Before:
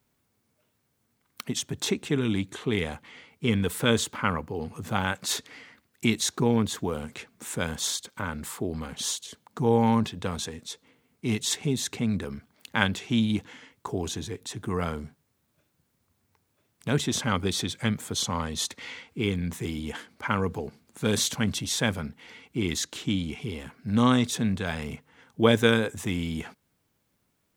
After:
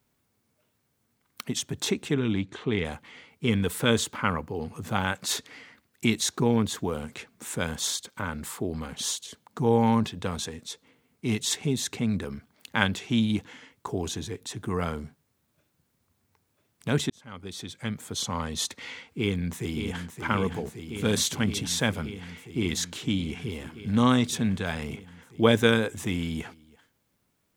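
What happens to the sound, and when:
0:02.14–0:02.85: high-frequency loss of the air 110 metres
0:17.10–0:18.58: fade in
0:19.11–0:20.13: delay throw 570 ms, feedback 85%, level −7.5 dB

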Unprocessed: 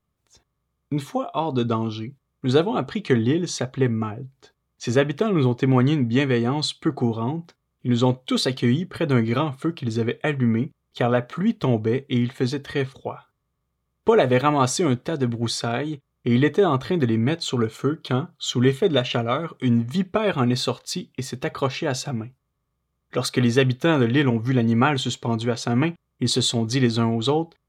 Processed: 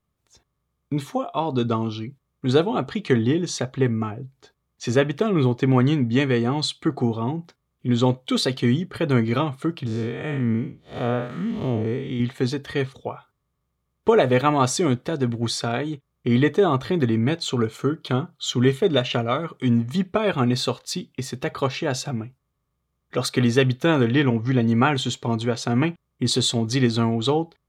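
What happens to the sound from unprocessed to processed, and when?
0:09.86–0:12.20: spectrum smeared in time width 159 ms
0:24.13–0:24.61: low-pass filter 6,200 Hz 24 dB per octave

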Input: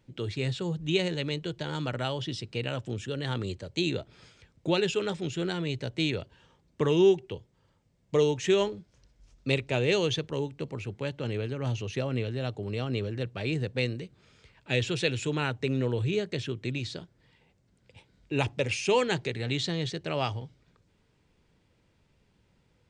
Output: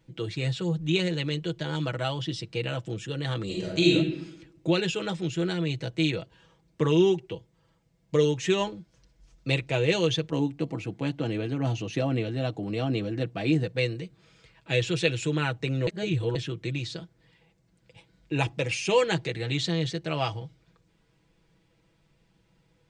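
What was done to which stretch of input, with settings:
0:03.45–0:03.93: thrown reverb, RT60 0.9 s, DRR −5 dB
0:10.32–0:13.64: hollow resonant body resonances 270/710 Hz, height 11 dB
0:15.87–0:16.35: reverse
whole clip: comb filter 6.1 ms

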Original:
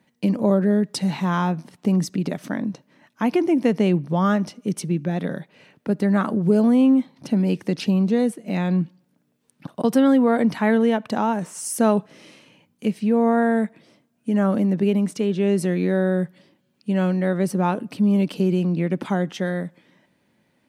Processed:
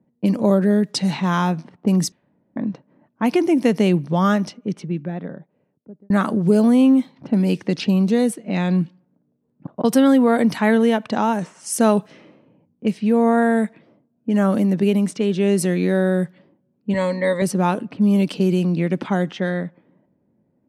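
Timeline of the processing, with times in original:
0:02.12–0:02.56: fill with room tone
0:04.27–0:06.10: fade out
0:16.93–0:17.42: EQ curve with evenly spaced ripples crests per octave 1, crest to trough 16 dB
whole clip: high-shelf EQ 4,100 Hz +8 dB; low-pass that shuts in the quiet parts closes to 500 Hz, open at −16.5 dBFS; level +2 dB

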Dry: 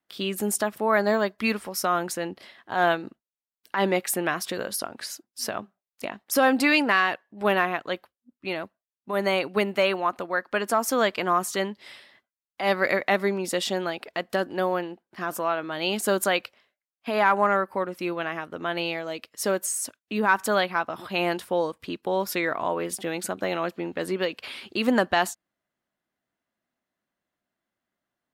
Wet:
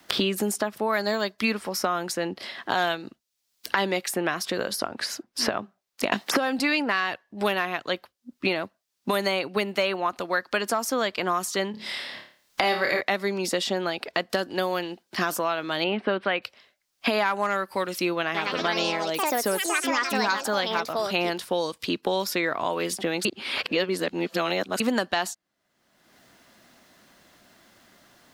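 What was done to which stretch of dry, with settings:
0:06.12–0:06.59: multiband upward and downward compressor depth 100%
0:11.71–0:13.01: flutter between parallel walls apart 4.8 metres, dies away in 0.37 s
0:15.84–0:16.42: inverse Chebyshev low-pass filter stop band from 6,400 Hz, stop band 50 dB
0:18.23–0:22.06: delay with pitch and tempo change per echo 114 ms, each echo +4 semitones, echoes 3
0:23.25–0:24.80: reverse
whole clip: parametric band 4,900 Hz +6.5 dB 1.2 octaves; multiband upward and downward compressor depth 100%; level −2.5 dB

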